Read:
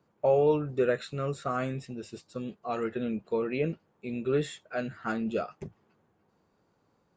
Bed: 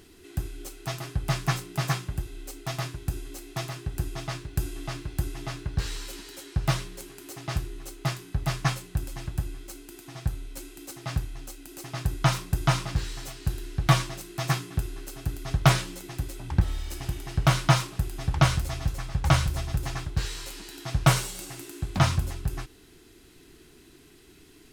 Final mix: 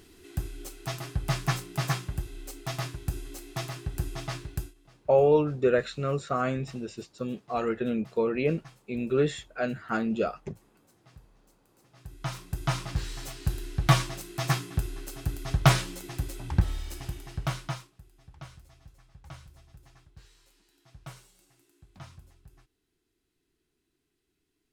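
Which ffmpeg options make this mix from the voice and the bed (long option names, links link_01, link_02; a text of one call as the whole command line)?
ffmpeg -i stem1.wav -i stem2.wav -filter_complex "[0:a]adelay=4850,volume=3dB[link_01];[1:a]volume=22.5dB,afade=type=out:start_time=4.48:duration=0.26:silence=0.0707946,afade=type=in:start_time=11.95:duration=1.38:silence=0.0630957,afade=type=out:start_time=16.5:duration=1.42:silence=0.0595662[link_02];[link_01][link_02]amix=inputs=2:normalize=0" out.wav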